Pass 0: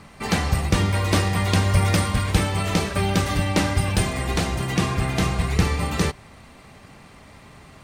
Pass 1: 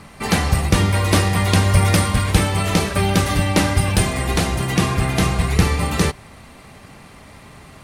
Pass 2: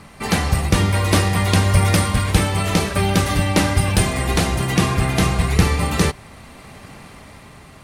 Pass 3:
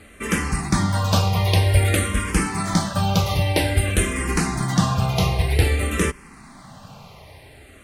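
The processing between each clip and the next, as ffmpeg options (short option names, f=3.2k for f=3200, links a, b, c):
-af "equalizer=f=11k:w=3.4:g=9.5,volume=4dB"
-af "dynaudnorm=f=160:g=11:m=11.5dB,volume=-1dB"
-filter_complex "[0:a]asplit=2[a][b];[b]afreqshift=-0.52[c];[a][c]amix=inputs=2:normalize=1"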